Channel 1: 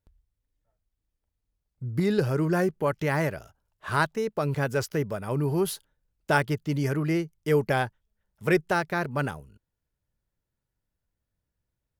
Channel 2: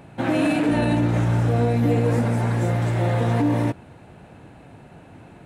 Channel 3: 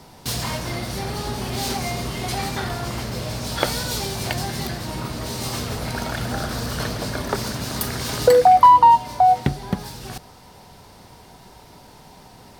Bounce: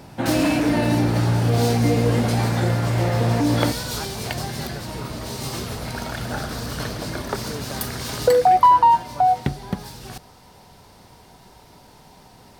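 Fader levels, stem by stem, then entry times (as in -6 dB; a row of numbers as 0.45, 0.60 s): -13.0, +0.5, -2.5 dB; 0.00, 0.00, 0.00 s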